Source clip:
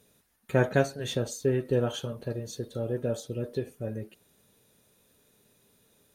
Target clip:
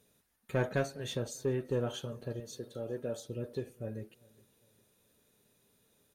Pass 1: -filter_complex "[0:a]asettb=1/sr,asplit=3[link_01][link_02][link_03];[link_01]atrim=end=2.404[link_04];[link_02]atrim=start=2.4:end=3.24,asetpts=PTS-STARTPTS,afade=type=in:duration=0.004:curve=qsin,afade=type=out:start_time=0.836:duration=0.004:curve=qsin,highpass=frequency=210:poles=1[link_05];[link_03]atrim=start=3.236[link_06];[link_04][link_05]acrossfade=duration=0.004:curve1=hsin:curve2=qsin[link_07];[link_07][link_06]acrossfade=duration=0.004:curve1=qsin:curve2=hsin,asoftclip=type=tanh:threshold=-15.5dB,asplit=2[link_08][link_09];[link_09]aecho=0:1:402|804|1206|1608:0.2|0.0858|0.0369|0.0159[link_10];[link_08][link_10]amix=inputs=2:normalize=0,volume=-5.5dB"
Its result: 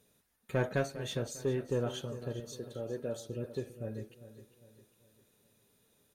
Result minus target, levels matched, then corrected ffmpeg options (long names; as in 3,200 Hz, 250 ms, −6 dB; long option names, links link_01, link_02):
echo-to-direct +11 dB
-filter_complex "[0:a]asettb=1/sr,asplit=3[link_01][link_02][link_03];[link_01]atrim=end=2.404[link_04];[link_02]atrim=start=2.4:end=3.24,asetpts=PTS-STARTPTS,afade=type=in:duration=0.004:curve=qsin,afade=type=out:start_time=0.836:duration=0.004:curve=qsin,highpass=frequency=210:poles=1[link_05];[link_03]atrim=start=3.236[link_06];[link_04][link_05]acrossfade=duration=0.004:curve1=hsin:curve2=qsin[link_07];[link_07][link_06]acrossfade=duration=0.004:curve1=qsin:curve2=hsin,asoftclip=type=tanh:threshold=-15.5dB,asplit=2[link_08][link_09];[link_09]aecho=0:1:402|804|1206:0.0562|0.0242|0.0104[link_10];[link_08][link_10]amix=inputs=2:normalize=0,volume=-5.5dB"